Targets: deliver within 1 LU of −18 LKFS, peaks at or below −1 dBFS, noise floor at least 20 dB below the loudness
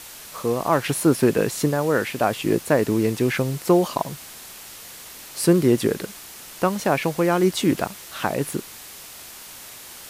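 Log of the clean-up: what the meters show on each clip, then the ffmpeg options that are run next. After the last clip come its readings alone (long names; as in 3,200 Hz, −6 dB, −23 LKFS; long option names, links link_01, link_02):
background noise floor −41 dBFS; target noise floor −42 dBFS; integrated loudness −22.0 LKFS; sample peak −5.5 dBFS; target loudness −18.0 LKFS
→ -af "afftdn=noise_reduction=6:noise_floor=-41"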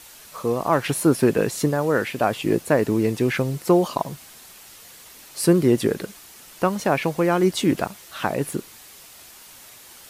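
background noise floor −46 dBFS; integrated loudness −22.0 LKFS; sample peak −6.0 dBFS; target loudness −18.0 LKFS
→ -af "volume=4dB"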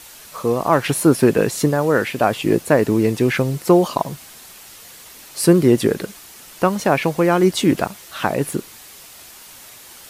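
integrated loudness −18.0 LKFS; sample peak −2.0 dBFS; background noise floor −42 dBFS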